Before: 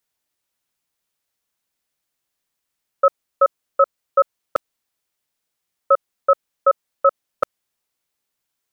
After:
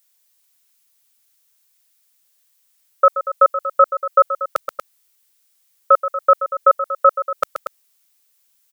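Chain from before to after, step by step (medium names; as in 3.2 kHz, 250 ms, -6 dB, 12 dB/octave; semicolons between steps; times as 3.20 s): tilt EQ +3.5 dB/octave; loudspeakers at several distances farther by 44 m -9 dB, 81 m -11 dB; in parallel at +2 dB: level held to a coarse grid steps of 18 dB; on the sum: trim -1 dB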